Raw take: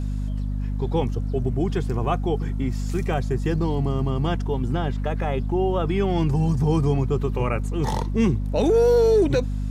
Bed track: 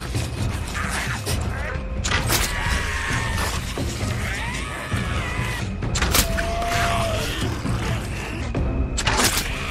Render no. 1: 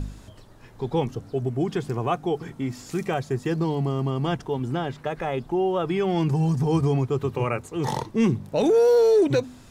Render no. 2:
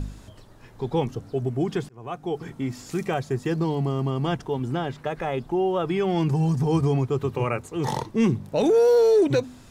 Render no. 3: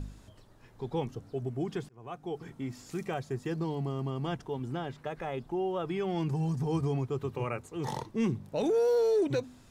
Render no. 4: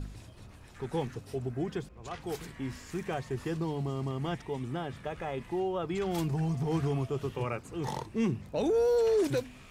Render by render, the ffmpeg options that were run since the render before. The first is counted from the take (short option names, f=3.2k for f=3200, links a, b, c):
-af "bandreject=f=50:t=h:w=4,bandreject=f=100:t=h:w=4,bandreject=f=150:t=h:w=4,bandreject=f=200:t=h:w=4,bandreject=f=250:t=h:w=4"
-filter_complex "[0:a]asplit=2[a][b];[a]atrim=end=1.89,asetpts=PTS-STARTPTS,afade=t=out:st=1.886:d=0.004:c=hsin[c];[b]atrim=start=1.89,asetpts=PTS-STARTPTS,afade=t=in:d=0.59[d];[c][d]concat=n=2:v=0:a=1"
-af "volume=-8.5dB"
-filter_complex "[1:a]volume=-26.5dB[a];[0:a][a]amix=inputs=2:normalize=0"